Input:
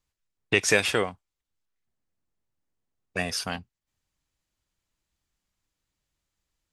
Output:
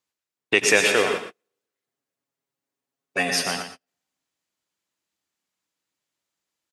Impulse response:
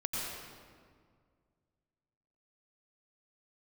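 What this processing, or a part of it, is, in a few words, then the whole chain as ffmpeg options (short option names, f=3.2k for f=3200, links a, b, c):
keyed gated reverb: -filter_complex "[0:a]highpass=240,asettb=1/sr,asplit=3[a][b][c];[a]atrim=end=1.084[d];[b]atrim=start=1.08:end=3.42,asetpts=PTS-STARTPTS,afade=t=in:d=0.004:c=qsin,afade=t=out:st=2.336:d=0.004:c=qsin,aecho=1:1:7.3:0.93,atrim=end_sample=103194[e];[c]atrim=start=3.416[f];[d][e]acrossfade=d=0.004:c1=hsin:c2=qsin[g];[g][f]acrossfade=d=0.004:c1=qsin:c2=hsin,asplit=3[h][i][j];[1:a]atrim=start_sample=2205[k];[i][k]afir=irnorm=-1:irlink=0[l];[j]apad=whole_len=296525[m];[l][m]sidechaingate=range=-49dB:threshold=-39dB:ratio=16:detection=peak,volume=-4.5dB[n];[h][n]amix=inputs=2:normalize=0,aecho=1:1:117:0.335"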